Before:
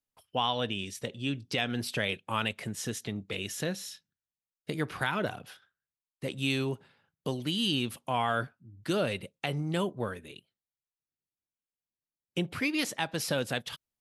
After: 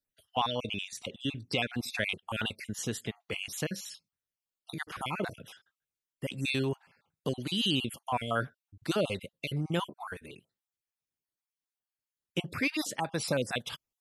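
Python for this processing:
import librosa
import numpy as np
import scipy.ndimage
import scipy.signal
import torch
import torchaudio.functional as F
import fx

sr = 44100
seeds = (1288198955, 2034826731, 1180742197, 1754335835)

y = fx.spec_dropout(x, sr, seeds[0], share_pct=36)
y = F.gain(torch.from_numpy(y), 1.0).numpy()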